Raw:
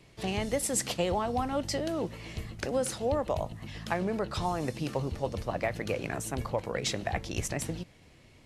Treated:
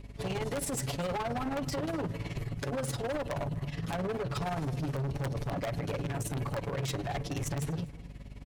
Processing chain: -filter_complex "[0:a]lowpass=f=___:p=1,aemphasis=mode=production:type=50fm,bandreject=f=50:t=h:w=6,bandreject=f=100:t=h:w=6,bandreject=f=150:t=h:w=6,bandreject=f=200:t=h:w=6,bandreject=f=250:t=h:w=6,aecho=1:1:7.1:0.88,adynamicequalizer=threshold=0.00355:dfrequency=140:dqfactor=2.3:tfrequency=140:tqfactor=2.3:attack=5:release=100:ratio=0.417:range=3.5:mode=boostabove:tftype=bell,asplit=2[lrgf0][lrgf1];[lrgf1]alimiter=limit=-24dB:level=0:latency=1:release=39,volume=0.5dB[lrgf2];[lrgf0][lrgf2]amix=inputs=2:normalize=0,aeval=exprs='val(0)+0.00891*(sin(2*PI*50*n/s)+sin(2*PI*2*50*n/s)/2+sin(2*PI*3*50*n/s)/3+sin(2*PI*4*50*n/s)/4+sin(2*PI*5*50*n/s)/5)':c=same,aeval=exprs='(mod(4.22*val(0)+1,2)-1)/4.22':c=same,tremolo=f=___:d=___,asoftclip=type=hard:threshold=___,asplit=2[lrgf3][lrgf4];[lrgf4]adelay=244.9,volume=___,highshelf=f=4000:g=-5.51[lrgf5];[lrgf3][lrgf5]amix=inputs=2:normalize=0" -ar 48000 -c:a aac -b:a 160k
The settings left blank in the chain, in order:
1300, 19, 0.79, -30.5dB, -19dB